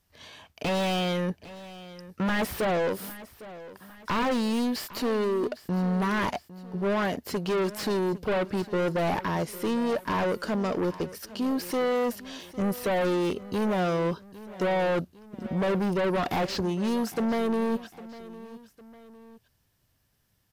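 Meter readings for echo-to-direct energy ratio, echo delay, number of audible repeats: −16.0 dB, 805 ms, 2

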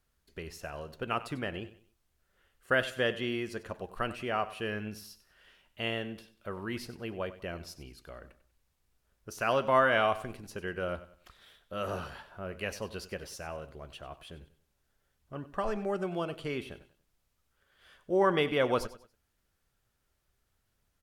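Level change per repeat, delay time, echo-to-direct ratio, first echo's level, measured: −9.5 dB, 95 ms, −15.0 dB, −15.5 dB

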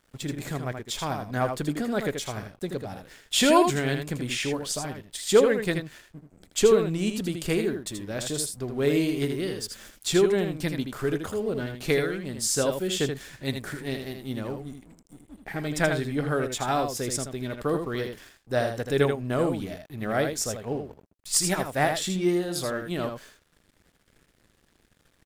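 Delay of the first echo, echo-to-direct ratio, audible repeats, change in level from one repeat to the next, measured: 80 ms, −6.5 dB, 1, repeats not evenly spaced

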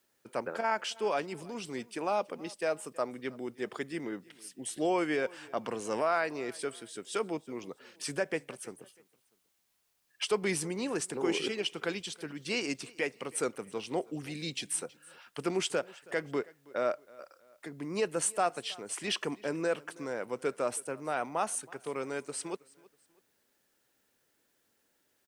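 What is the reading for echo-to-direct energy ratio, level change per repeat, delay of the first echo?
−22.5 dB, −8.5 dB, 322 ms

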